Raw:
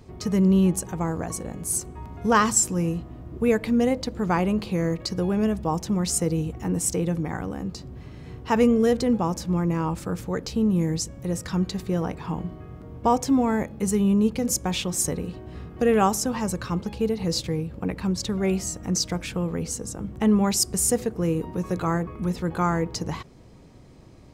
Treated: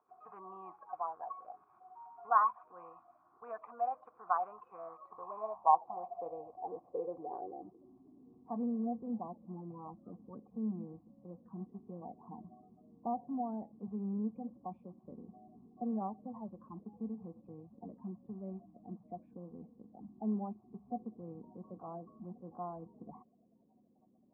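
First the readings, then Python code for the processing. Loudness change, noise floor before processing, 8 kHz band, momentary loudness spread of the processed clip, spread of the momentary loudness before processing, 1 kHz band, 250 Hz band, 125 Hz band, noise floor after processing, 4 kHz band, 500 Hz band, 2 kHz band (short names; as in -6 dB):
-15.0 dB, -45 dBFS, under -40 dB, 19 LU, 11 LU, -7.0 dB, -18.5 dB, -24.0 dB, -69 dBFS, under -40 dB, -19.0 dB, under -20 dB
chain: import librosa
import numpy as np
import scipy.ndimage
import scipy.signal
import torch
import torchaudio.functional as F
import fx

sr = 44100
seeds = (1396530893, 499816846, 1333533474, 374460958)

y = fx.spec_quant(x, sr, step_db=30)
y = fx.filter_sweep_bandpass(y, sr, from_hz=1400.0, to_hz=220.0, start_s=4.73, end_s=8.52, q=5.1)
y = fx.formant_cascade(y, sr, vowel='a')
y = F.gain(torch.from_numpy(y), 15.0).numpy()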